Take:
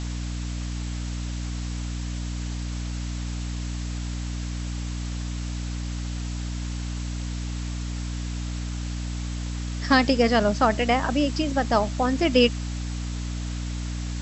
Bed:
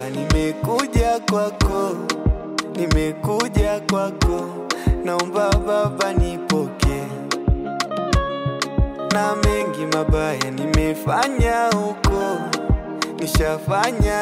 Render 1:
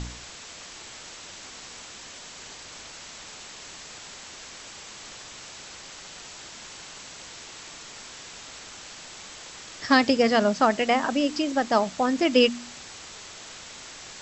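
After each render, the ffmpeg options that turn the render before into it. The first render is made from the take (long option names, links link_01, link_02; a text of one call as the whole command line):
ffmpeg -i in.wav -af "bandreject=frequency=60:width_type=h:width=4,bandreject=frequency=120:width_type=h:width=4,bandreject=frequency=180:width_type=h:width=4,bandreject=frequency=240:width_type=h:width=4,bandreject=frequency=300:width_type=h:width=4" out.wav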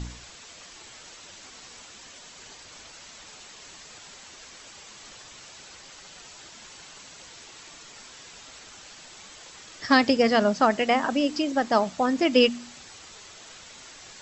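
ffmpeg -i in.wav -af "afftdn=noise_reduction=6:noise_floor=-43" out.wav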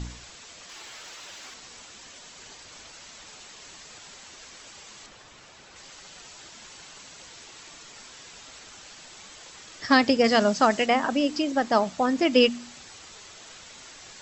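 ffmpeg -i in.wav -filter_complex "[0:a]asettb=1/sr,asplit=3[link_01][link_02][link_03];[link_01]atrim=end=0.694[link_04];[link_02]atrim=start=0.69:end=1.54,asetpts=PTS-STARTPTS,afade=type=in:duration=0.004:curve=qsin,afade=type=out:start_time=0.846:duration=0.004:curve=qsin,asplit=2[link_05][link_06];[link_06]highpass=frequency=720:poles=1,volume=12dB,asoftclip=type=tanh:threshold=-33dB[link_07];[link_05][link_07]amix=inputs=2:normalize=0,lowpass=frequency=5200:poles=1,volume=-6dB[link_08];[link_03]atrim=start=1.536[link_09];[link_04][link_08]acrossfade=duration=0.004:curve1=hsin:curve2=qsin[link_10];[link_10][link_09]acrossfade=duration=0.004:curve1=qsin:curve2=hsin,asettb=1/sr,asplit=3[link_11][link_12][link_13];[link_11]atrim=end=5.064[link_14];[link_12]atrim=start=5.06:end=5.76,asetpts=PTS-STARTPTS,afade=type=in:duration=0.004:curve=qsin,afade=type=out:start_time=0.696:duration=0.004:curve=qsin,highshelf=frequency=3500:gain=-9.5[link_15];[link_13]atrim=start=5.756[link_16];[link_14][link_15]acrossfade=duration=0.004:curve1=hsin:curve2=qsin[link_17];[link_17][link_16]acrossfade=duration=0.004:curve1=qsin:curve2=hsin,asettb=1/sr,asplit=3[link_18][link_19][link_20];[link_18]atrim=end=10.244[link_21];[link_19]atrim=start=10.24:end=10.86,asetpts=PTS-STARTPTS,afade=type=in:duration=0.004:curve=qsin,afade=type=out:start_time=0.616:duration=0.004:curve=qsin,highshelf=frequency=4600:gain=9[link_22];[link_20]atrim=start=10.856[link_23];[link_21][link_22]acrossfade=duration=0.004:curve1=hsin:curve2=qsin[link_24];[link_24][link_23]acrossfade=duration=0.004:curve1=qsin:curve2=hsin" out.wav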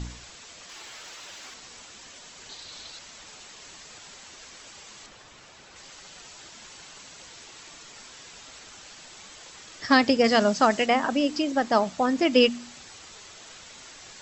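ffmpeg -i in.wav -filter_complex "[0:a]asettb=1/sr,asplit=3[link_01][link_02][link_03];[link_01]atrim=end=2.494[link_04];[link_02]atrim=start=2.49:end=2.99,asetpts=PTS-STARTPTS,afade=type=in:duration=0.004:curve=qsin,afade=type=out:start_time=0.496:duration=0.004:curve=qsin,equalizer=frequency=4000:width=3.1:gain=10.5[link_05];[link_03]atrim=start=2.986[link_06];[link_04][link_05]acrossfade=duration=0.004:curve1=hsin:curve2=qsin[link_07];[link_07][link_06]acrossfade=duration=0.004:curve1=qsin:curve2=hsin" out.wav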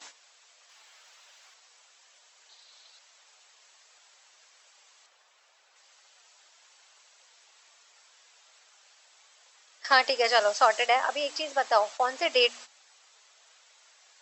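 ffmpeg -i in.wav -af "agate=range=-13dB:threshold=-36dB:ratio=16:detection=peak,highpass=frequency=550:width=0.5412,highpass=frequency=550:width=1.3066" out.wav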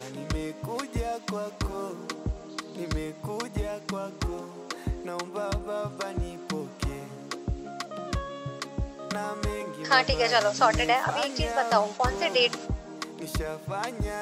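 ffmpeg -i in.wav -i bed.wav -filter_complex "[1:a]volume=-13dB[link_01];[0:a][link_01]amix=inputs=2:normalize=0" out.wav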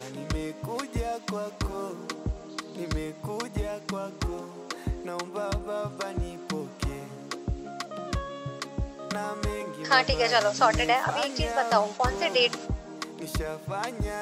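ffmpeg -i in.wav -af anull out.wav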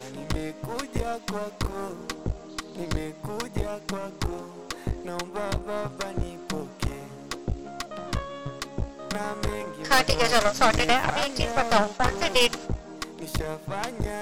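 ffmpeg -i in.wav -af "aeval=exprs='0.473*(cos(1*acos(clip(val(0)/0.473,-1,1)))-cos(1*PI/2))+0.0841*(cos(8*acos(clip(val(0)/0.473,-1,1)))-cos(8*PI/2))':channel_layout=same" out.wav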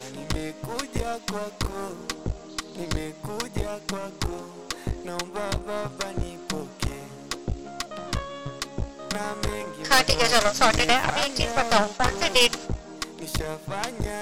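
ffmpeg -i in.wav -af "equalizer=frequency=6500:width=0.37:gain=4.5" out.wav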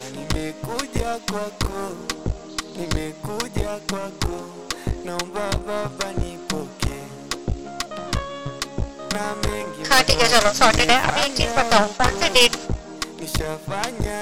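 ffmpeg -i in.wav -af "volume=4.5dB,alimiter=limit=-1dB:level=0:latency=1" out.wav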